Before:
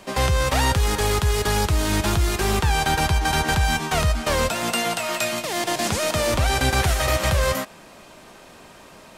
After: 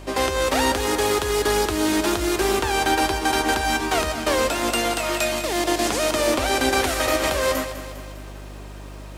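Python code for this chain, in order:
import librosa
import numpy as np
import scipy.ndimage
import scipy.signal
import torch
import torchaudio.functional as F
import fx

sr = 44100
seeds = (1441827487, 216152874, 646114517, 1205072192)

y = fx.low_shelf_res(x, sr, hz=210.0, db=-11.5, q=3.0)
y = fx.add_hum(y, sr, base_hz=50, snr_db=17)
y = fx.echo_crushed(y, sr, ms=201, feedback_pct=55, bits=8, wet_db=-11.5)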